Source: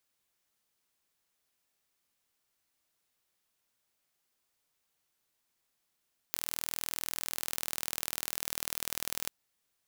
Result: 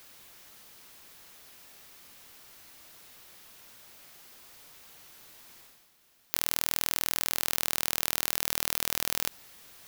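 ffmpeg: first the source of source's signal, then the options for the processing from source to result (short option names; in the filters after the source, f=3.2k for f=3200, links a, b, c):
-f lavfi -i "aevalsrc='0.562*eq(mod(n,1097),0)*(0.5+0.5*eq(mod(n,2194),0))':d=2.94:s=44100"
-af "areverse,acompressor=mode=upward:threshold=-55dB:ratio=2.5,areverse,equalizer=f=8.4k:t=o:w=0.78:g=-4,alimiter=level_in=15.5dB:limit=-1dB:release=50:level=0:latency=1"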